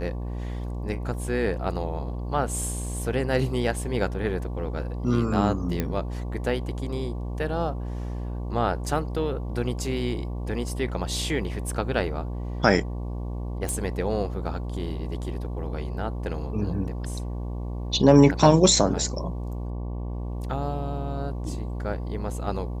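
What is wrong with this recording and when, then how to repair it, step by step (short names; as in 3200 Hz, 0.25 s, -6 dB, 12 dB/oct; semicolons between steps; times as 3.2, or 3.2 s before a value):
buzz 60 Hz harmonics 19 -31 dBFS
5.8 pop -12 dBFS
13.69 pop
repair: de-click; de-hum 60 Hz, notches 19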